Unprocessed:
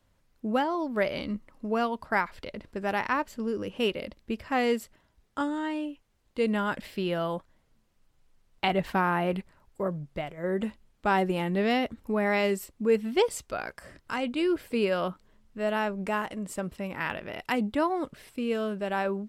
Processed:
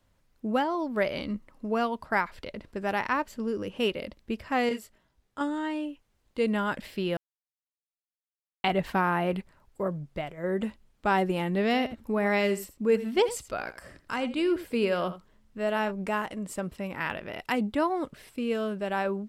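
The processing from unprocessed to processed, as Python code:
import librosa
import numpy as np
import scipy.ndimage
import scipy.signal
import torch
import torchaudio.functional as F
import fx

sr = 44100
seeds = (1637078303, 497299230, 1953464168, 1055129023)

y = fx.detune_double(x, sr, cents=14, at=(4.69, 5.41))
y = fx.echo_single(y, sr, ms=83, db=-14.5, at=(11.72, 15.9), fade=0.02)
y = fx.edit(y, sr, fx.silence(start_s=7.17, length_s=1.47), tone=tone)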